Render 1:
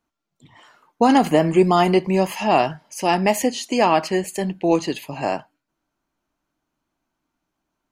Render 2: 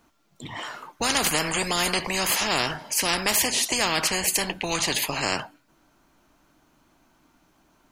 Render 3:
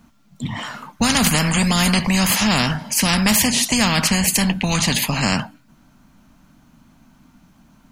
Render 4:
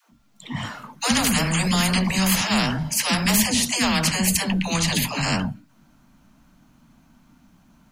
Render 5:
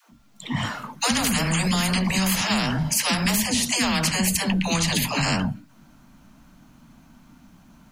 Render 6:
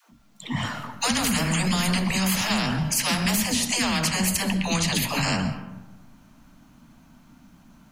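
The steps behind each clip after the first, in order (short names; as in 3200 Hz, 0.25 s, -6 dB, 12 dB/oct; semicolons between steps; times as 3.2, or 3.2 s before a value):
spectral compressor 4:1; gain -2 dB
resonant low shelf 280 Hz +7.5 dB, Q 3; gain +5 dB
dispersion lows, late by 0.121 s, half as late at 360 Hz; gain -3.5 dB
compressor, threshold -23 dBFS, peak gain reduction 9 dB; gain +4 dB
reverb RT60 1.1 s, pre-delay 90 ms, DRR 11 dB; gain -1.5 dB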